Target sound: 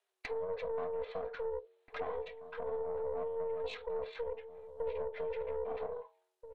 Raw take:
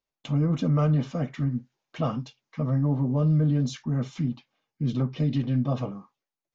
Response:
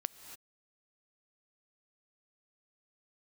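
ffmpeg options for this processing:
-filter_complex "[0:a]alimiter=limit=0.0668:level=0:latency=1:release=54,asetrate=24750,aresample=44100,atempo=1.7818,afreqshift=370,bandreject=f=530:w=12,bandreject=f=91.73:t=h:w=4,bandreject=f=183.46:t=h:w=4,bandreject=f=275.19:t=h:w=4,bandreject=f=366.92:t=h:w=4,bandreject=f=458.65:t=h:w=4,bandreject=f=550.38:t=h:w=4,bandreject=f=642.11:t=h:w=4,bandreject=f=733.84:t=h:w=4,bandreject=f=825.57:t=h:w=4,bandreject=f=917.3:t=h:w=4,bandreject=f=1009.03:t=h:w=4,acompressor=threshold=0.00316:ratio=2,aeval=exprs='(tanh(70.8*val(0)+0.6)-tanh(0.6))/70.8':c=same,asplit=2[s0][s1];[s1]adelay=1633,volume=0.251,highshelf=f=4000:g=-36.7[s2];[s0][s2]amix=inputs=2:normalize=0,volume=2.51"

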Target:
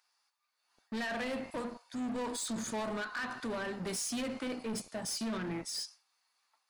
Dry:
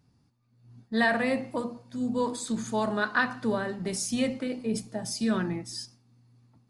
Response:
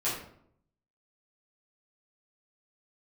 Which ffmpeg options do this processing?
-filter_complex "[0:a]acrossover=split=860[s0][s1];[s0]aeval=exprs='sgn(val(0))*max(abs(val(0))-0.00631,0)':c=same[s2];[s2][s1]amix=inputs=2:normalize=0,equalizer=f=110:w=1.4:g=-7,alimiter=limit=0.0668:level=0:latency=1:release=163,asoftclip=type=tanh:threshold=0.0158,volume=1.41"

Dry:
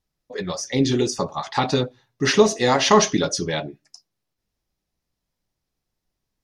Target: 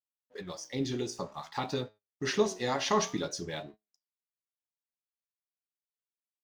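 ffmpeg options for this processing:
-af "aeval=exprs='sgn(val(0))*max(abs(val(0))-0.00473,0)':c=same,flanger=delay=9.3:depth=8.6:regen=81:speed=0.53:shape=sinusoidal,agate=range=0.178:threshold=0.00708:ratio=16:detection=peak,volume=0.398"

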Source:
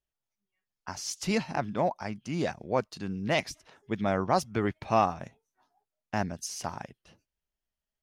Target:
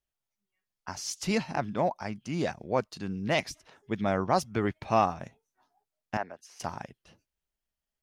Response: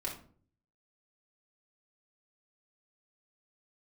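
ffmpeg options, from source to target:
-filter_complex "[0:a]asettb=1/sr,asplit=3[s0][s1][s2];[s0]atrim=end=6.174[s3];[s1]atrim=start=6.17:end=6.6,asetpts=PTS-STARTPTS,afade=t=in:d=0.004:c=qsin,afade=t=out:st=0.426:d=0.004:c=qsin,acrossover=split=400 2500:gain=0.0708 1 0.126[s4][s5][s6];[s4][s5][s6]amix=inputs=3:normalize=0[s7];[s2]atrim=start=6.596[s8];[s3][s7]acrossfade=d=0.004:c1=hsin:c2=qsin[s9];[s9][s8]acrossfade=d=0.004:c1=qsin:c2=hsin"

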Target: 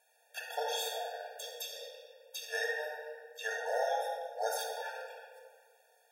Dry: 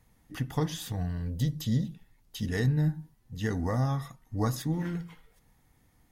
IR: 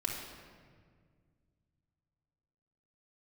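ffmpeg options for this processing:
-filter_complex "[1:a]atrim=start_sample=2205[s0];[0:a][s0]afir=irnorm=-1:irlink=0,afftfilt=real='re*eq(mod(floor(b*sr/1024/470),2),1)':imag='im*eq(mod(floor(b*sr/1024/470),2),1)':win_size=1024:overlap=0.75,volume=1.41"

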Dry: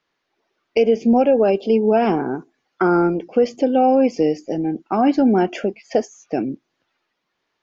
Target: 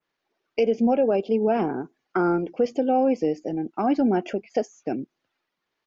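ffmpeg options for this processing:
-af "atempo=1.3,adynamicequalizer=threshold=0.00562:dfrequency=4600:dqfactor=0.85:tfrequency=4600:tqfactor=0.85:attack=5:release=100:ratio=0.375:range=2.5:mode=cutabove:tftype=bell,volume=0.531"

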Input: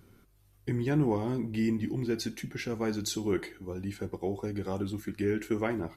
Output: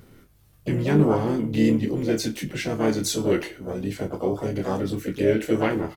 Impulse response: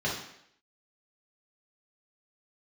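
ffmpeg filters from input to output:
-filter_complex "[0:a]asplit=2[s0][s1];[s1]adelay=27,volume=0.447[s2];[s0][s2]amix=inputs=2:normalize=0,asplit=3[s3][s4][s5];[s4]asetrate=58866,aresample=44100,atempo=0.749154,volume=0.501[s6];[s5]asetrate=66075,aresample=44100,atempo=0.66742,volume=0.282[s7];[s3][s6][s7]amix=inputs=3:normalize=0,volume=1.88"

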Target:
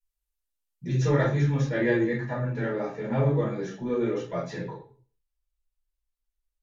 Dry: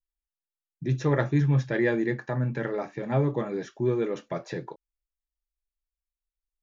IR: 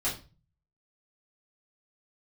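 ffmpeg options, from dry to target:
-filter_complex "[1:a]atrim=start_sample=2205,afade=t=out:st=0.4:d=0.01,atrim=end_sample=18081,asetrate=32634,aresample=44100[s0];[0:a][s0]afir=irnorm=-1:irlink=0,flanger=delay=0.9:depth=5.7:regen=-54:speed=0.44:shape=triangular,asetnsamples=n=441:p=0,asendcmd='1.69 highshelf g 3',highshelf=f=5600:g=10.5,volume=0.596"

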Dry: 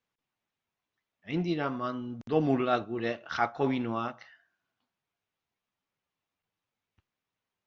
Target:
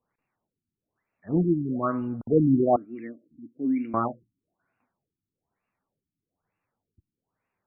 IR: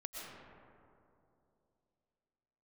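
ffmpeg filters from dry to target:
-filter_complex "[0:a]asettb=1/sr,asplit=3[s0][s1][s2];[s0]atrim=end=2.764[s3];[s1]atrim=start=2.76:end=3.94,asetpts=PTS-STARTPTS,afade=t=in:d=0.004:c=qsin,afade=t=out:st=1.176:d=0.004:c=qsin,asplit=3[s4][s5][s6];[s4]bandpass=f=270:t=q:w=8,volume=1[s7];[s5]bandpass=f=2290:t=q:w=8,volume=0.501[s8];[s6]bandpass=f=3010:t=q:w=8,volume=0.355[s9];[s7][s8][s9]amix=inputs=3:normalize=0[s10];[s2]atrim=start=3.936[s11];[s3][s10]acrossfade=d=0.004:c1=hsin:c2=qsin[s12];[s12][s11]acrossfade=d=0.004:c1=qsin:c2=hsin,afftfilt=real='re*lt(b*sr/1024,340*pow(2900/340,0.5+0.5*sin(2*PI*1.1*pts/sr)))':imag='im*lt(b*sr/1024,340*pow(2900/340,0.5+0.5*sin(2*PI*1.1*pts/sr)))':win_size=1024:overlap=0.75,volume=2.37"

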